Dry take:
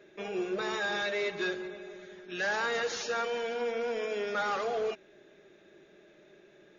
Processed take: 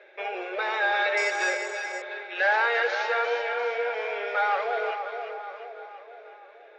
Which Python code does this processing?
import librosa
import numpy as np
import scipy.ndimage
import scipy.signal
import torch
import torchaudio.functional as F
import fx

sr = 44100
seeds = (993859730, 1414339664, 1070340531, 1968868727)

y = fx.rider(x, sr, range_db=10, speed_s=2.0)
y = fx.echo_split(y, sr, split_hz=1200.0, low_ms=474, high_ms=349, feedback_pct=52, wet_db=-7)
y = fx.resample_bad(y, sr, factor=6, down='filtered', up='zero_stuff', at=(1.17, 2.02))
y = fx.cabinet(y, sr, low_hz=480.0, low_slope=24, high_hz=4400.0, hz=(530.0, 810.0, 1500.0, 2200.0), db=(9, 9, 6, 9))